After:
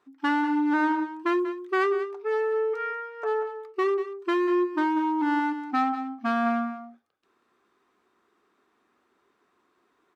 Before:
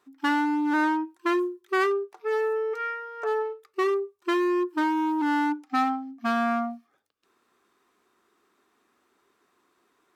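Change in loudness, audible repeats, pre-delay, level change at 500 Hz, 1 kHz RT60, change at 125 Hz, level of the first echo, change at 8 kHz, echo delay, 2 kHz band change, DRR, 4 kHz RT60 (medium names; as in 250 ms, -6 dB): 0.0 dB, 1, no reverb, +0.5 dB, no reverb, no reading, -12.0 dB, no reading, 189 ms, -1.0 dB, no reverb, no reverb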